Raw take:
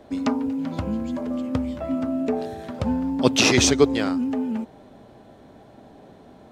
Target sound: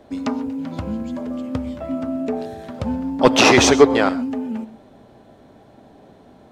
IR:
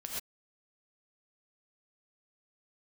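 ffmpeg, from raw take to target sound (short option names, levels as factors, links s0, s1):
-filter_complex "[0:a]asettb=1/sr,asplit=3[s0][s1][s2];[s0]atrim=end=3.214[s3];[s1]atrim=start=3.21:end=4.09,asetpts=PTS-STARTPTS,afade=t=in:d=0.004:c=qsin,afade=t=out:st=0.876:d=0.004:c=qsin,equalizer=f=910:w=0.47:g=13.5[s4];[s2]atrim=start=4.086[s5];[s3][s4]acrossfade=d=0.004:c1=hsin:c2=qsin[s6];[s6][s5]acrossfade=d=0.004:c1=qsin:c2=hsin,asoftclip=type=tanh:threshold=0.891,asplit=2[s7][s8];[1:a]atrim=start_sample=2205[s9];[s8][s9]afir=irnorm=-1:irlink=0,volume=0.2[s10];[s7][s10]amix=inputs=2:normalize=0,volume=0.891"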